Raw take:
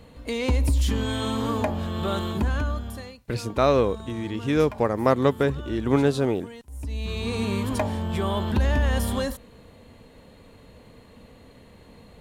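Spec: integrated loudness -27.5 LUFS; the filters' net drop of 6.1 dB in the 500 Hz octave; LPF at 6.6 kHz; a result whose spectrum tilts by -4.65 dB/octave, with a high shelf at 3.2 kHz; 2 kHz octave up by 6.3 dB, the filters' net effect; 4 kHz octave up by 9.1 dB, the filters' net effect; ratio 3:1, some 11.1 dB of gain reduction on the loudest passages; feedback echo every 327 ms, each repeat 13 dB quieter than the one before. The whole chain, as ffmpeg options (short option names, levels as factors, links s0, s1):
-af "lowpass=6600,equalizer=f=500:t=o:g=-8,equalizer=f=2000:t=o:g=4.5,highshelf=f=3200:g=8.5,equalizer=f=4000:t=o:g=4.5,acompressor=threshold=0.0224:ratio=3,aecho=1:1:327|654|981:0.224|0.0493|0.0108,volume=2.11"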